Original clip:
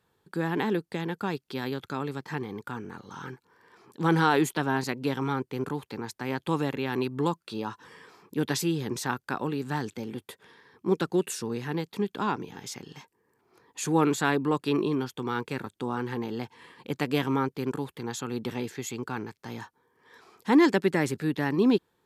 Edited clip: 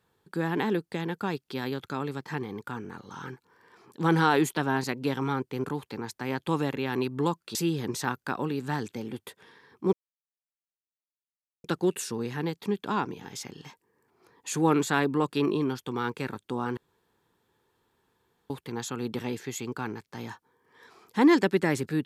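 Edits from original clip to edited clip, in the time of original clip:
0:07.55–0:08.57: remove
0:10.95: splice in silence 1.71 s
0:16.08–0:17.81: fill with room tone

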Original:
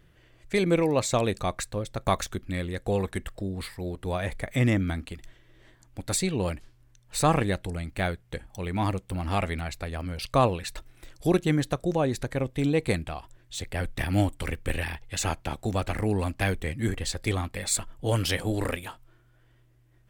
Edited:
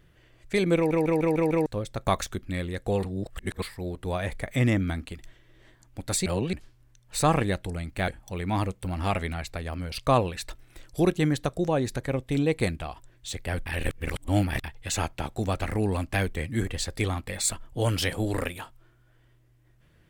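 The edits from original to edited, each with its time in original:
0:00.76: stutter in place 0.15 s, 6 plays
0:03.03–0:03.62: reverse
0:06.26–0:06.53: reverse
0:08.08–0:08.35: remove
0:13.93–0:14.91: reverse

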